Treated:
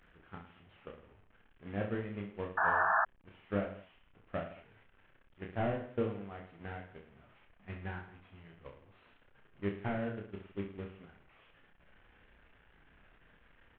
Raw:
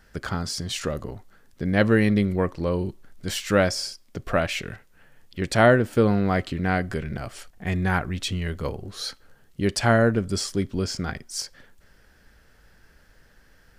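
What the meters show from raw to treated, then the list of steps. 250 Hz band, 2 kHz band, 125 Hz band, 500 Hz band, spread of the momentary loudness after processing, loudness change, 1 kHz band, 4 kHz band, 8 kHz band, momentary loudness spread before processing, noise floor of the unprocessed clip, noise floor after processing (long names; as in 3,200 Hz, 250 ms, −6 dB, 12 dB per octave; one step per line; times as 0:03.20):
−17.5 dB, −10.5 dB, −18.0 dB, −16.0 dB, 24 LU, −12.5 dB, −8.0 dB, −28.0 dB, below −40 dB, 15 LU, −57 dBFS, −66 dBFS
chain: linear delta modulator 16 kbit/s, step −26.5 dBFS
downward compressor 5 to 1, threshold −24 dBFS, peak gain reduction 10.5 dB
noise gate −24 dBFS, range −28 dB
on a send: reverse bouncing-ball delay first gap 30 ms, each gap 1.2×, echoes 5
on the sum: sound drawn into the spectrogram noise, 0:02.57–0:03.05, 630–1,800 Hz −25 dBFS
level −4 dB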